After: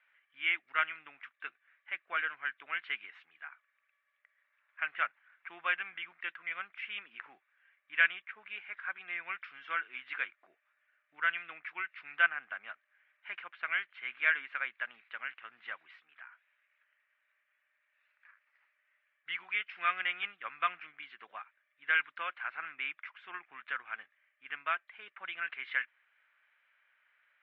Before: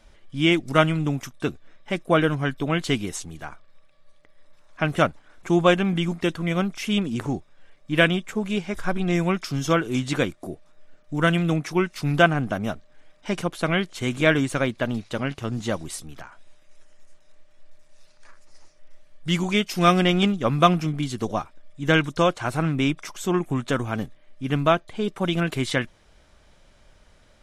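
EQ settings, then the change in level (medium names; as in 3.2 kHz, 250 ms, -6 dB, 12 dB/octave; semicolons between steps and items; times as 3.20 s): Butterworth band-pass 2 kHz, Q 1.6; distance through air 400 m; 0.0 dB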